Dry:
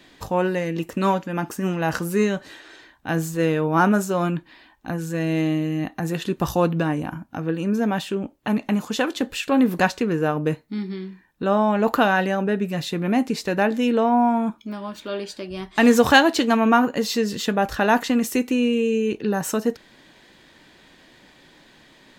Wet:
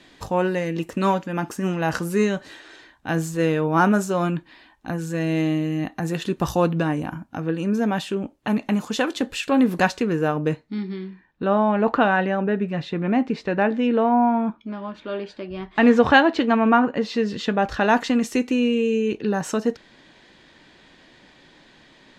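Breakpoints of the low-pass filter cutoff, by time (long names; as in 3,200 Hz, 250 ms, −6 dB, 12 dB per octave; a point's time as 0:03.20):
0:10.27 11,000 Hz
0:10.85 4,500 Hz
0:11.89 2,700 Hz
0:16.98 2,700 Hz
0:17.97 6,700 Hz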